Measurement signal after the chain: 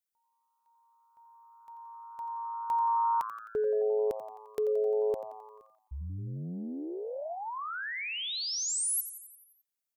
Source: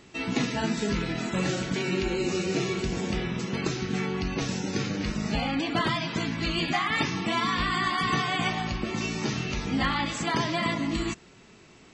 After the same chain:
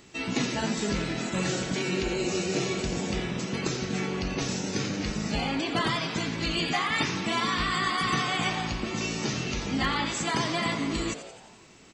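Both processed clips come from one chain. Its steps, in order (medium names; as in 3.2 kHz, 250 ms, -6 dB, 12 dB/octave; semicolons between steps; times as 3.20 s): treble shelf 6.7 kHz +10 dB; frequency-shifting echo 87 ms, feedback 60%, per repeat +110 Hz, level -12 dB; trim -1.5 dB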